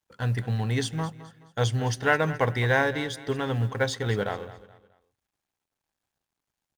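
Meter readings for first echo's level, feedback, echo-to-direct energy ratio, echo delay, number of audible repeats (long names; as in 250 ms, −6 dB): −16.0 dB, 35%, −15.5 dB, 213 ms, 3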